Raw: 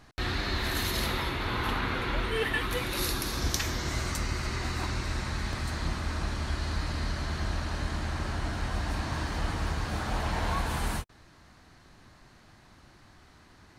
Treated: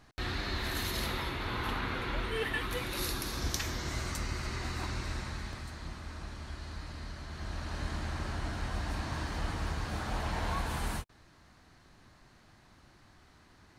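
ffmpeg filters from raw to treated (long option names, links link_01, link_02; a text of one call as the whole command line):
ffmpeg -i in.wav -af "volume=2.5dB,afade=type=out:start_time=5.08:duration=0.65:silence=0.473151,afade=type=in:start_time=7.29:duration=0.57:silence=0.446684" out.wav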